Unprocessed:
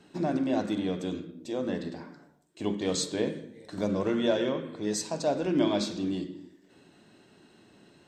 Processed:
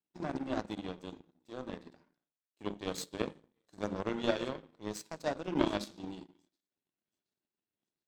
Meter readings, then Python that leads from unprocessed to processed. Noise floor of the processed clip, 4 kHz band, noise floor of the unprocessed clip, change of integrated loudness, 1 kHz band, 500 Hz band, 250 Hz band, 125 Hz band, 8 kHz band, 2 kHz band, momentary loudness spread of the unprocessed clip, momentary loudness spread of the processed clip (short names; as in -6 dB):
under -85 dBFS, -7.5 dB, -60 dBFS, -7.5 dB, -4.0 dB, -8.0 dB, -9.0 dB, -8.5 dB, -11.5 dB, -3.5 dB, 14 LU, 14 LU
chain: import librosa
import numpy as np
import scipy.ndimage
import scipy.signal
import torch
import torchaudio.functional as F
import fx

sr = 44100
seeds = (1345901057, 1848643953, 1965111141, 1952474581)

y = fx.echo_wet_highpass(x, sr, ms=724, feedback_pct=69, hz=1700.0, wet_db=-21.0)
y = fx.power_curve(y, sr, exponent=2.0)
y = F.gain(torch.from_numpy(y), 1.5).numpy()